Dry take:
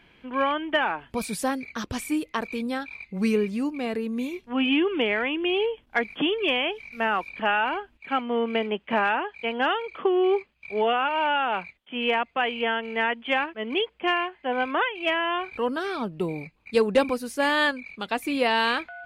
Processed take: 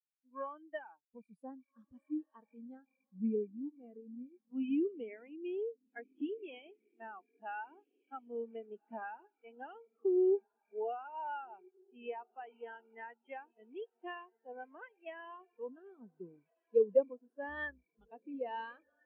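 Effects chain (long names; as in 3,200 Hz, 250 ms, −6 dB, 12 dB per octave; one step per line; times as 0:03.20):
0:17.48–0:18.11: sub-octave generator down 2 octaves, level +1 dB
feedback delay with all-pass diffusion 1,546 ms, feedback 48%, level −11.5 dB
every bin expanded away from the loudest bin 2.5 to 1
level −6.5 dB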